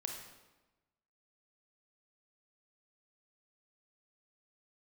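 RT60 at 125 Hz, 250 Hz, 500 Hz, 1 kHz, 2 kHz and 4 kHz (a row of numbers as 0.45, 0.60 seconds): 1.3, 1.2, 1.1, 1.1, 0.95, 0.85 seconds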